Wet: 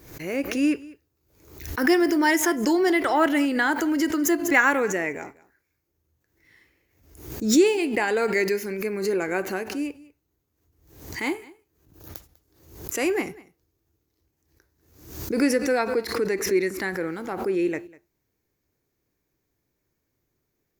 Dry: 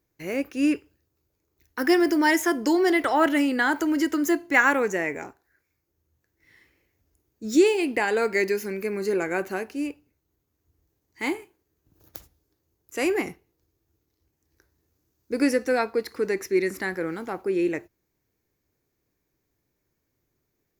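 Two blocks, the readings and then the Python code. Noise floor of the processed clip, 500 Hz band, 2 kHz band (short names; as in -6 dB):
-77 dBFS, +0.5 dB, +0.5 dB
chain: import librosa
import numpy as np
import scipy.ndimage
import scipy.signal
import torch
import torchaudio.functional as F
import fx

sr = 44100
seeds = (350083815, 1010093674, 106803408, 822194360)

y = x + 10.0 ** (-21.5 / 20.0) * np.pad(x, (int(197 * sr / 1000.0), 0))[:len(x)]
y = fx.pre_swell(y, sr, db_per_s=82.0)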